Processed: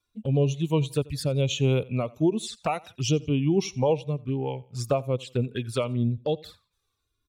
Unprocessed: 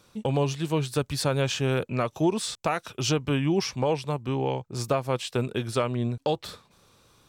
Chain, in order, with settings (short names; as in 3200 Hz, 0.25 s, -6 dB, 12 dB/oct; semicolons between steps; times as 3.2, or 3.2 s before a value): per-bin expansion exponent 1.5; rotary speaker horn 1 Hz; envelope flanger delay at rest 2.9 ms, full sweep at -29 dBFS; feedback echo 86 ms, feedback 34%, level -23 dB; gain +6 dB